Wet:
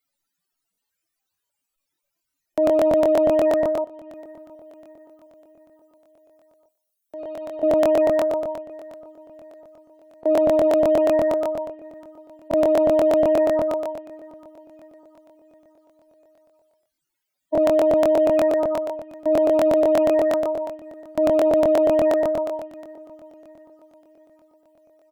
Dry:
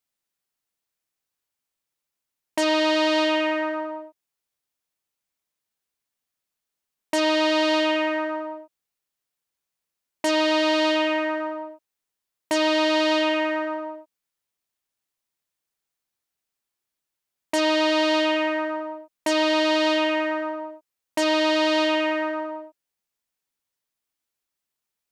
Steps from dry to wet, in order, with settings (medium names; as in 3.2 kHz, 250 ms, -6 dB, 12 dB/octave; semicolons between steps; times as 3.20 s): spectral contrast enhancement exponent 4; 3.84–7.63 s: pre-emphasis filter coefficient 0.9; peak limiter -19 dBFS, peak gain reduction 3.5 dB; feedback delay 711 ms, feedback 48%, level -20 dB; reverberation, pre-delay 3 ms, DRR 9.5 dB; crackling interface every 0.12 s, samples 1024, repeat, from 0.73 s; trim +4.5 dB